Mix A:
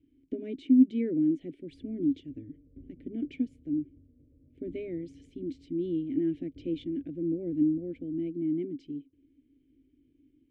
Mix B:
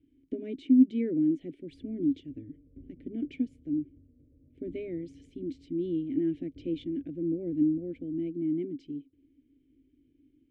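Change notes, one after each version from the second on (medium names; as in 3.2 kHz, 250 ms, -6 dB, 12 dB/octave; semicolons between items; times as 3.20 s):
no change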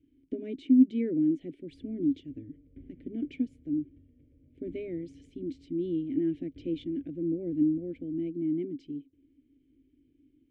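background: add high-order bell 2.1 kHz +14.5 dB 2.5 oct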